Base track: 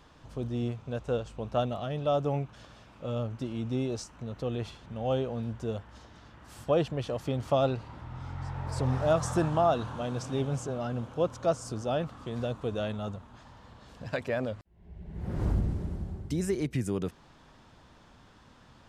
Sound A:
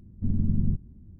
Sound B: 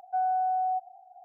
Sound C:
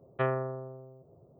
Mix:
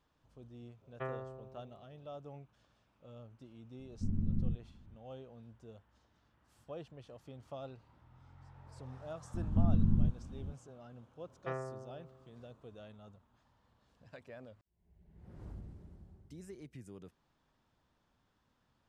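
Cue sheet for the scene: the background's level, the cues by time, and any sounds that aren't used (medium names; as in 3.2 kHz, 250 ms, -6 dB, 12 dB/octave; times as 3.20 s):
base track -20 dB
0.81 s: add C -11.5 dB
3.79 s: add A -9 dB
9.34 s: add A -3.5 dB + three bands compressed up and down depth 70%
11.27 s: add C -10.5 dB + high-pass 58 Hz
not used: B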